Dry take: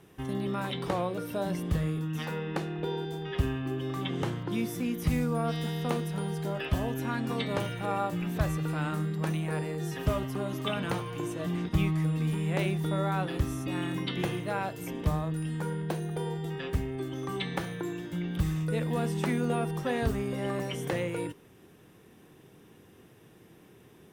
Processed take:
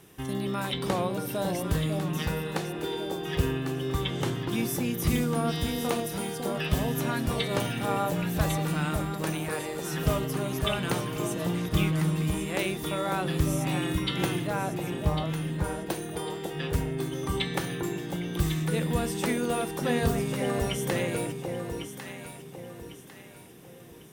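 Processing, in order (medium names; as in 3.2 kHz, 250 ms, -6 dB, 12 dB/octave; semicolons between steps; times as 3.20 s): treble shelf 3.6 kHz +9.5 dB, from 14.47 s -3 dB, from 15.64 s +9.5 dB; echo whose repeats swap between lows and highs 550 ms, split 840 Hz, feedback 60%, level -4 dB; trim +1 dB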